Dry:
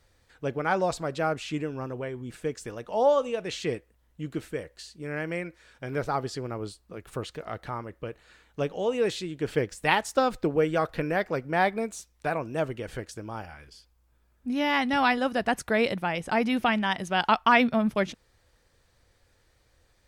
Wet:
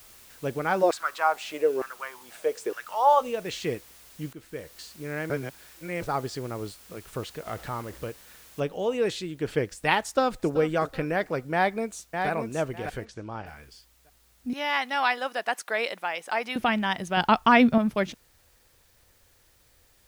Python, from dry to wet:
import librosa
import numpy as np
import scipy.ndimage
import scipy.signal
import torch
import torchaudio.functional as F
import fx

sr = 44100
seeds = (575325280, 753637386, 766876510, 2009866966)

y = fx.filter_lfo_highpass(x, sr, shape='saw_down', hz=1.1, low_hz=370.0, high_hz=1700.0, q=5.2, at=(0.82, 3.2), fade=0.02)
y = fx.zero_step(y, sr, step_db=-43.5, at=(7.46, 8.1))
y = fx.noise_floor_step(y, sr, seeds[0], at_s=8.6, before_db=-52, after_db=-64, tilt_db=0.0)
y = fx.echo_throw(y, sr, start_s=10.01, length_s=0.49, ms=380, feedback_pct=35, wet_db=-15.0)
y = fx.echo_throw(y, sr, start_s=11.53, length_s=0.76, ms=600, feedback_pct=20, wet_db=-5.5)
y = fx.lowpass(y, sr, hz=4500.0, slope=12, at=(13.04, 13.45), fade=0.02)
y = fx.highpass(y, sr, hz=610.0, slope=12, at=(14.53, 16.56))
y = fx.low_shelf(y, sr, hz=400.0, db=8.0, at=(17.17, 17.78))
y = fx.edit(y, sr, fx.fade_in_from(start_s=4.33, length_s=0.43, floor_db=-15.0),
    fx.reverse_span(start_s=5.3, length_s=0.72), tone=tone)